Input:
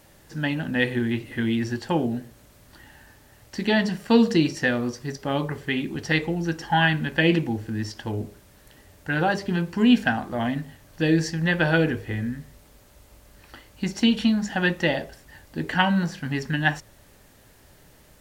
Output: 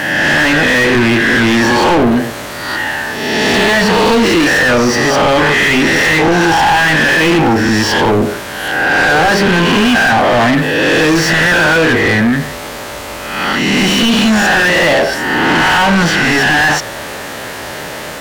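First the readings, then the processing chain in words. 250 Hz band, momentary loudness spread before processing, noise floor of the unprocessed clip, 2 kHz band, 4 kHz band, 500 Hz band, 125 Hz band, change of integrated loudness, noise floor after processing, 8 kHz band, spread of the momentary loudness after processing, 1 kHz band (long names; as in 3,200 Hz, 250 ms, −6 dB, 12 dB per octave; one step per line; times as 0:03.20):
+10.5 dB, 12 LU, −54 dBFS, +17.5 dB, +17.0 dB, +15.0 dB, +9.0 dB, +14.0 dB, −25 dBFS, +21.5 dB, 12 LU, +17.0 dB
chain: peak hold with a rise ahead of every peak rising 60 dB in 0.93 s
mid-hump overdrive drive 37 dB, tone 2,400 Hz, clips at −4 dBFS
in parallel at +2.5 dB: brickwall limiter −12.5 dBFS, peak gain reduction 7 dB
on the sum: level −3.5 dB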